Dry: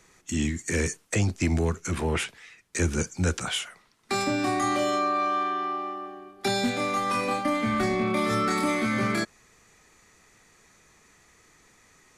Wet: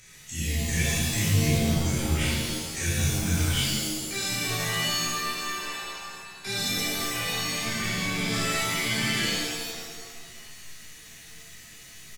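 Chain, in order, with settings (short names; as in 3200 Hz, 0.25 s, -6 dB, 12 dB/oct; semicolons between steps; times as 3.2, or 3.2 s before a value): chorus 0.75 Hz, delay 20 ms, depth 4.8 ms; upward compressor, threshold -43 dBFS; band shelf 530 Hz -13.5 dB 2.8 oct; on a send: frequency-shifting echo 0.246 s, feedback 59%, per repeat -120 Hz, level -18 dB; on the sum: shimmer reverb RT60 1.3 s, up +7 st, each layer -2 dB, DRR -9 dB; gain -4.5 dB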